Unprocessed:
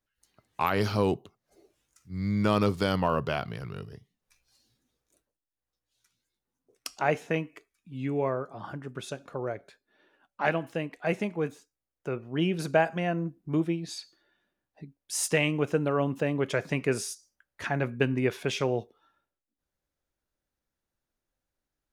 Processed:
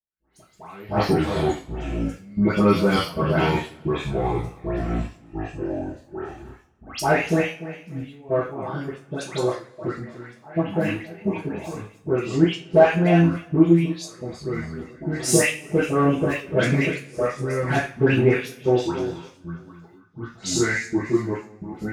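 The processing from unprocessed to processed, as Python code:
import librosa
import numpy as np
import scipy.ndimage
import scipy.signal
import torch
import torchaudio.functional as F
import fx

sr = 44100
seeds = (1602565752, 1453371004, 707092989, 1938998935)

p1 = fx.echo_pitch(x, sr, ms=92, semitones=-5, count=2, db_per_echo=-6.0)
p2 = p1 + fx.echo_feedback(p1, sr, ms=294, feedback_pct=27, wet_db=-15.0, dry=0)
p3 = fx.step_gate(p2, sr, bpm=152, pattern='..xxxx...x.xxxx', floor_db=-24.0, edge_ms=4.5)
p4 = fx.dispersion(p3, sr, late='highs', ms=138.0, hz=2000.0)
p5 = 10.0 ** (-26.0 / 20.0) * np.tanh(p4 / 10.0 ** (-26.0 / 20.0))
p6 = p4 + (p5 * librosa.db_to_amplitude(-5.0))
p7 = fx.rev_double_slope(p6, sr, seeds[0], early_s=0.32, late_s=1.6, knee_db=-25, drr_db=-6.5)
y = p7 * librosa.db_to_amplitude(-2.0)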